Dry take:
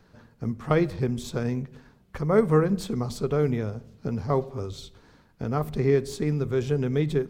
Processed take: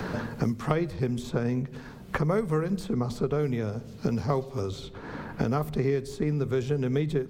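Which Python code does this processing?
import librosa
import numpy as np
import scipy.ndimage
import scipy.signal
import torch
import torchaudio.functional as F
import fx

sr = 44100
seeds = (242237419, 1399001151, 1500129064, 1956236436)

y = fx.band_squash(x, sr, depth_pct=100)
y = y * 10.0 ** (-2.5 / 20.0)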